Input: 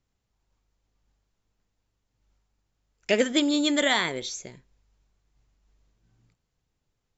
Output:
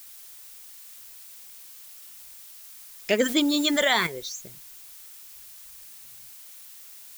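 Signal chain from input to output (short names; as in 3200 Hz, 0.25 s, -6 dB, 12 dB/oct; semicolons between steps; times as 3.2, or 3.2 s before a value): reverb removal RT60 1.6 s; added noise blue -46 dBFS; 3.19–4.07 fast leveller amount 50%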